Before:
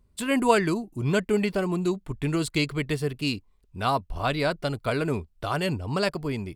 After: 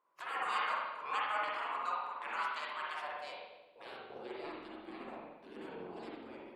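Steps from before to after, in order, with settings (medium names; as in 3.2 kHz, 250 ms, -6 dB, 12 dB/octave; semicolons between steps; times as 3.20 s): spectral gate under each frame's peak -20 dB weak; spring tank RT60 1.1 s, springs 44/57 ms, chirp 35 ms, DRR -4.5 dB; band-pass sweep 1.1 kHz -> 320 Hz, 2.85–4.71 s; trim +5 dB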